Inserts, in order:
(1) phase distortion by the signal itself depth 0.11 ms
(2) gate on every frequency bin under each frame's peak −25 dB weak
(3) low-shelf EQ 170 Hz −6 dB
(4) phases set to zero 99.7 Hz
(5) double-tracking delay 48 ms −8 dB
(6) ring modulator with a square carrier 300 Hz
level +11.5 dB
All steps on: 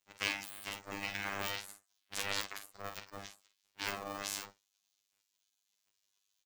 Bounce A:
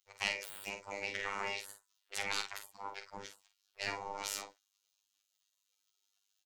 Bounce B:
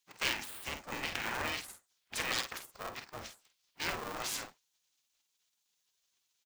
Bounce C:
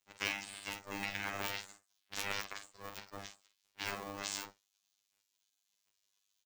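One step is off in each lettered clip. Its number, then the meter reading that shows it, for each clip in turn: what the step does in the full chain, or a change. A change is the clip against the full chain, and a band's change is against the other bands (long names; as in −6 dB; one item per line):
6, 125 Hz band −5.5 dB
4, change in crest factor −5.5 dB
1, change in crest factor −2.0 dB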